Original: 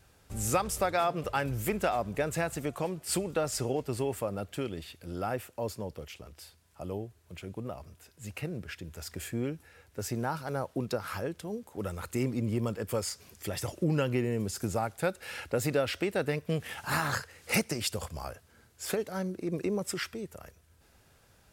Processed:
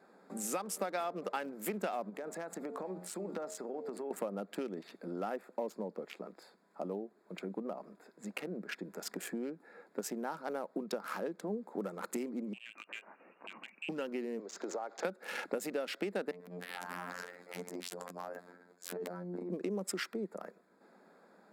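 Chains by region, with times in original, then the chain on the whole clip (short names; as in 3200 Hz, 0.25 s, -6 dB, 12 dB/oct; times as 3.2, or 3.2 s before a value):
2.09–4.11 low shelf 500 Hz -4 dB + de-hum 89.46 Hz, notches 10 + compressor 8:1, threshold -40 dBFS
12.53–13.89 inverted band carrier 2900 Hz + compressor 2:1, threshold -54 dBFS
14.39–15.05 HPF 350 Hz 24 dB/oct + compressor 10:1, threshold -38 dBFS + careless resampling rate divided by 3×, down none, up filtered
16.31–19.5 compressor 16:1, threshold -38 dBFS + robotiser 88.7 Hz + transient shaper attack -11 dB, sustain +10 dB
whole clip: Wiener smoothing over 15 samples; compressor 6:1, threshold -40 dBFS; elliptic high-pass 190 Hz, stop band 40 dB; gain +6.5 dB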